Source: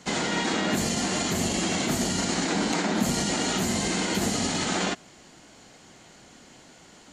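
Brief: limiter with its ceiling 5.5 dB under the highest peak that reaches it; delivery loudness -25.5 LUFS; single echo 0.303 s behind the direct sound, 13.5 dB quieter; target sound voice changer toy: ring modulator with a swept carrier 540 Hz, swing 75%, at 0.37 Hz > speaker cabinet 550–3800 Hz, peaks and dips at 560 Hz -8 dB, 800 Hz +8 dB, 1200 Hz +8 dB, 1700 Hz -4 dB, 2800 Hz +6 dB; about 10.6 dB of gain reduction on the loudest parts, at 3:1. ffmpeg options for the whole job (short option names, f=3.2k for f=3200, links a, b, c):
-af "acompressor=threshold=-35dB:ratio=3,alimiter=level_in=4.5dB:limit=-24dB:level=0:latency=1,volume=-4.5dB,aecho=1:1:303:0.211,aeval=exprs='val(0)*sin(2*PI*540*n/s+540*0.75/0.37*sin(2*PI*0.37*n/s))':c=same,highpass=550,equalizer=f=560:t=q:w=4:g=-8,equalizer=f=800:t=q:w=4:g=8,equalizer=f=1.2k:t=q:w=4:g=8,equalizer=f=1.7k:t=q:w=4:g=-4,equalizer=f=2.8k:t=q:w=4:g=6,lowpass=f=3.8k:w=0.5412,lowpass=f=3.8k:w=1.3066,volume=14.5dB"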